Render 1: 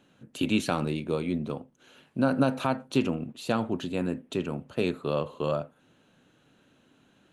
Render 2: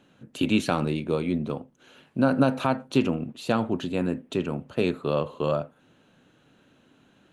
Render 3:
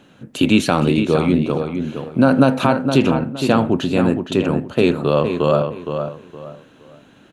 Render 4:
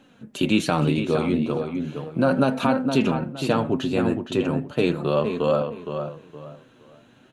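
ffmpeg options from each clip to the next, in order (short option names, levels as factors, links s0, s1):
-af "highshelf=f=5500:g=-4.5,volume=1.41"
-filter_complex "[0:a]asplit=2[s0][s1];[s1]alimiter=limit=0.15:level=0:latency=1,volume=0.75[s2];[s0][s2]amix=inputs=2:normalize=0,asplit=2[s3][s4];[s4]adelay=465,lowpass=f=3300:p=1,volume=0.447,asplit=2[s5][s6];[s6]adelay=465,lowpass=f=3300:p=1,volume=0.28,asplit=2[s7][s8];[s8]adelay=465,lowpass=f=3300:p=1,volume=0.28[s9];[s3][s5][s7][s9]amix=inputs=4:normalize=0,volume=1.78"
-af "flanger=delay=3.7:depth=5.3:regen=43:speed=0.36:shape=triangular,volume=0.841"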